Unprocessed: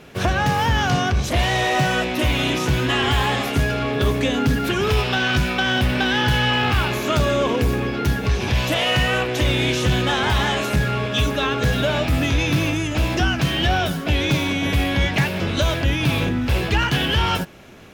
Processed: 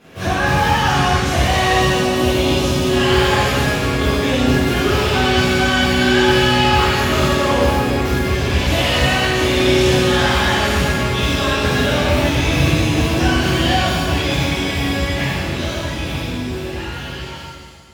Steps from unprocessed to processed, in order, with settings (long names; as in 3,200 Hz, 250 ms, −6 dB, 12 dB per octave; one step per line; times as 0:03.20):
fade-out on the ending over 4.41 s
0:01.76–0:02.97: parametric band 1,800 Hz −11.5 dB 0.68 octaves
reverb with rising layers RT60 1.7 s, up +7 semitones, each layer −8 dB, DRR −12 dB
level −8.5 dB